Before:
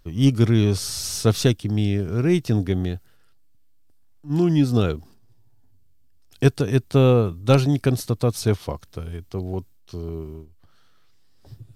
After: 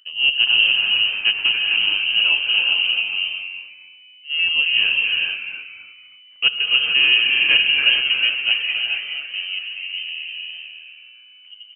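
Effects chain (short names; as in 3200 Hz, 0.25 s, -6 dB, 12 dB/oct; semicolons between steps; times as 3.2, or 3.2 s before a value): median filter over 15 samples; frequency-shifting echo 0.276 s, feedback 30%, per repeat +120 Hz, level -8 dB; inverted band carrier 3000 Hz; non-linear reverb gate 0.48 s rising, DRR 0.5 dB; gain -1.5 dB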